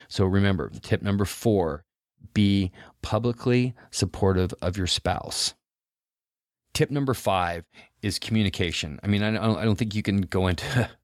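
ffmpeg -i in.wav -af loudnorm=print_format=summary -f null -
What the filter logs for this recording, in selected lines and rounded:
Input Integrated:    -25.5 LUFS
Input True Peak:      -7.7 dBTP
Input LRA:             2.1 LU
Input Threshold:     -35.8 LUFS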